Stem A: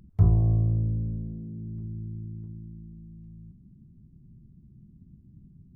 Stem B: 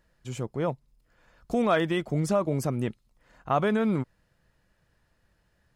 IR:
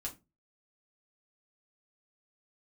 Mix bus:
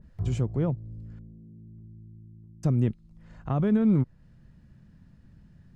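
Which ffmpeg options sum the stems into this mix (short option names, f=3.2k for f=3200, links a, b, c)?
-filter_complex "[0:a]acompressor=mode=upward:threshold=-32dB:ratio=2.5,volume=-12dB[a];[1:a]lowpass=7.9k,lowshelf=f=200:g=12,acrossover=split=370[b][c];[c]acompressor=threshold=-38dB:ratio=2.5[d];[b][d]amix=inputs=2:normalize=0,volume=-0.5dB,asplit=3[e][f][g];[e]atrim=end=1.19,asetpts=PTS-STARTPTS,afade=t=out:st=1.186:d=0.004:c=hsin[h];[f]atrim=start=1.19:end=2.63,asetpts=PTS-STARTPTS,volume=0[i];[g]atrim=start=2.63,asetpts=PTS-STARTPTS,afade=t=in:d=0.004:c=hsin[j];[h][i][j]concat=n=3:v=0:a=1,asplit=2[k][l];[l]apad=whole_len=253903[m];[a][m]sidechaincompress=threshold=-28dB:ratio=8:attack=42:release=575[n];[n][k]amix=inputs=2:normalize=0,adynamicequalizer=threshold=0.00316:dfrequency=1700:dqfactor=0.7:tfrequency=1700:tqfactor=0.7:attack=5:release=100:ratio=0.375:range=2:mode=cutabove:tftype=highshelf"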